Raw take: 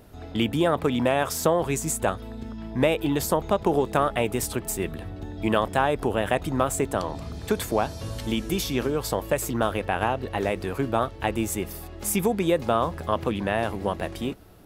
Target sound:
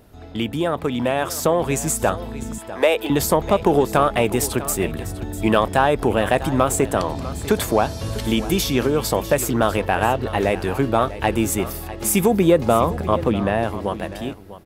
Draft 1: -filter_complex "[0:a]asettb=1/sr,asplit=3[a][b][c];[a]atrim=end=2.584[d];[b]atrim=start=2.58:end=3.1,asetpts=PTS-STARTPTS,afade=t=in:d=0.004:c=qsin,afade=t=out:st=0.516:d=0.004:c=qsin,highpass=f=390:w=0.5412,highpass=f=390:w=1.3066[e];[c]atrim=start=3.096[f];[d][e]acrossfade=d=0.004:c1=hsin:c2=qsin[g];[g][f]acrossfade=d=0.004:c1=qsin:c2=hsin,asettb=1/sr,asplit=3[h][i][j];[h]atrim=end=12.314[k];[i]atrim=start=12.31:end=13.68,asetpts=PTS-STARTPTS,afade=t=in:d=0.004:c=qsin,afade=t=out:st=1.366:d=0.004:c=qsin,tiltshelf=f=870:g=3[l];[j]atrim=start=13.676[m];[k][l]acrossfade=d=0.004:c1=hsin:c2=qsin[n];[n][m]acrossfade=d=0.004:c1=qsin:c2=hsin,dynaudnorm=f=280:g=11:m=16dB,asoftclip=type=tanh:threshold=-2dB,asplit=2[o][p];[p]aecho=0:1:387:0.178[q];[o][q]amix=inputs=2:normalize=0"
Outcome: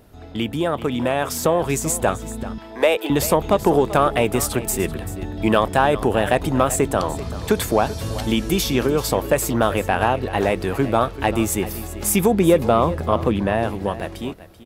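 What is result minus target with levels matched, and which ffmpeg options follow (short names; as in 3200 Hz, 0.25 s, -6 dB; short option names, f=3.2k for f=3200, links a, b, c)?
echo 0.261 s early
-filter_complex "[0:a]asettb=1/sr,asplit=3[a][b][c];[a]atrim=end=2.584[d];[b]atrim=start=2.58:end=3.1,asetpts=PTS-STARTPTS,afade=t=in:d=0.004:c=qsin,afade=t=out:st=0.516:d=0.004:c=qsin,highpass=f=390:w=0.5412,highpass=f=390:w=1.3066[e];[c]atrim=start=3.096[f];[d][e]acrossfade=d=0.004:c1=hsin:c2=qsin[g];[g][f]acrossfade=d=0.004:c1=qsin:c2=hsin,asettb=1/sr,asplit=3[h][i][j];[h]atrim=end=12.314[k];[i]atrim=start=12.31:end=13.68,asetpts=PTS-STARTPTS,afade=t=in:d=0.004:c=qsin,afade=t=out:st=1.366:d=0.004:c=qsin,tiltshelf=f=870:g=3[l];[j]atrim=start=13.676[m];[k][l]acrossfade=d=0.004:c1=hsin:c2=qsin[n];[n][m]acrossfade=d=0.004:c1=qsin:c2=hsin,dynaudnorm=f=280:g=11:m=16dB,asoftclip=type=tanh:threshold=-2dB,asplit=2[o][p];[p]aecho=0:1:648:0.178[q];[o][q]amix=inputs=2:normalize=0"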